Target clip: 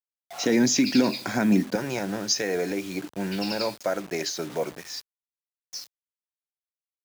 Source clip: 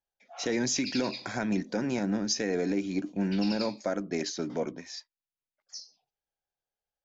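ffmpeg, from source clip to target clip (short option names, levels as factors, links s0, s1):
-af "asetnsamples=n=441:p=0,asendcmd='1.75 equalizer g -12',equalizer=f=240:t=o:w=0.79:g=5,acrusher=bits=7:mix=0:aa=0.000001,highpass=74,volume=1.88"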